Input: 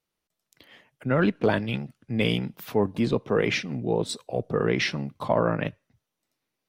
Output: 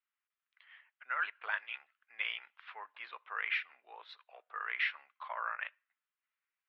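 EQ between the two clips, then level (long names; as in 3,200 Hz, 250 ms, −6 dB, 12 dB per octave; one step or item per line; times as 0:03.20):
high-pass filter 1,300 Hz 24 dB per octave
Bessel low-pass filter 1,800 Hz, order 6
0.0 dB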